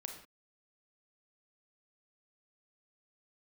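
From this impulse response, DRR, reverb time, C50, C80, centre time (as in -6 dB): 3.0 dB, no single decay rate, 6.0 dB, 9.5 dB, 24 ms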